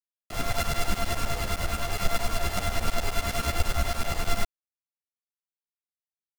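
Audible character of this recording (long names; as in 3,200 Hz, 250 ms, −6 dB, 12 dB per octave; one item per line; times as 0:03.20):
a buzz of ramps at a fixed pitch in blocks of 64 samples
tremolo saw up 9.7 Hz, depth 95%
a quantiser's noise floor 6 bits, dither none
a shimmering, thickened sound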